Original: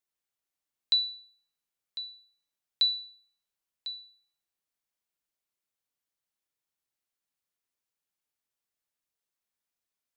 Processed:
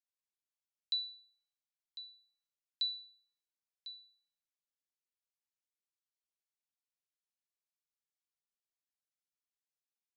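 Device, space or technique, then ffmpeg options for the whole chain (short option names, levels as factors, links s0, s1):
piezo pickup straight into a mixer: -af "lowpass=5500,aderivative,volume=0.631"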